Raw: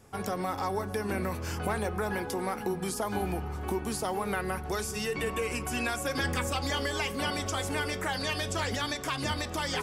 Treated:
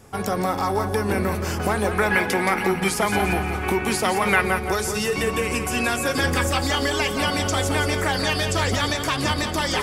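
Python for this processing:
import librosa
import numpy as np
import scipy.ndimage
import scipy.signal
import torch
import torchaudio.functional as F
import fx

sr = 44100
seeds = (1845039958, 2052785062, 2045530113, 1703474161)

y = fx.peak_eq(x, sr, hz=2200.0, db=12.5, octaves=1.1, at=(1.91, 4.42))
y = fx.echo_feedback(y, sr, ms=173, feedback_pct=43, wet_db=-8)
y = y * librosa.db_to_amplitude(8.0)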